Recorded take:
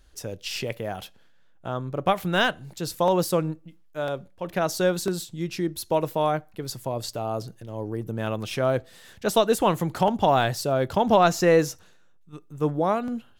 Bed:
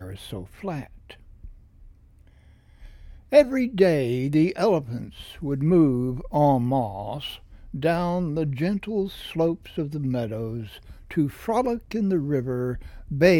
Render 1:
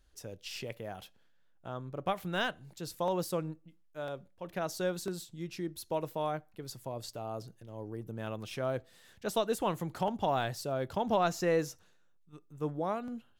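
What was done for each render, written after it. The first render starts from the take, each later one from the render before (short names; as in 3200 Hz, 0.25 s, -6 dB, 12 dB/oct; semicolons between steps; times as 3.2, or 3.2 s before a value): gain -10.5 dB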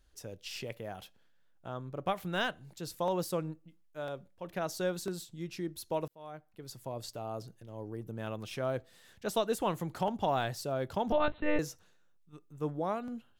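6.08–6.91 fade in; 11.12–11.59 monotone LPC vocoder at 8 kHz 300 Hz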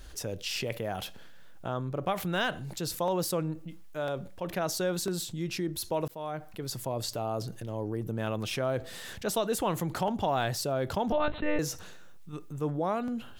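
fast leveller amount 50%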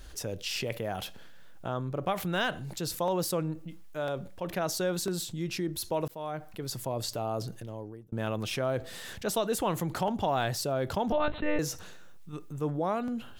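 7.47–8.12 fade out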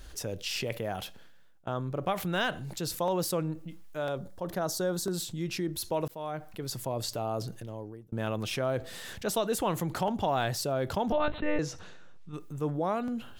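0.91–1.67 fade out, to -22.5 dB; 4.17–5.14 bell 2500 Hz -13 dB 0.65 oct; 11.4–12.34 air absorption 84 m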